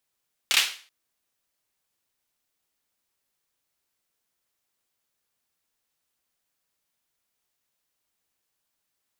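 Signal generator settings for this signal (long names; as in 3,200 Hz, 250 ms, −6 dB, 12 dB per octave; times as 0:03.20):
synth clap length 0.38 s, bursts 3, apart 29 ms, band 2,900 Hz, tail 0.40 s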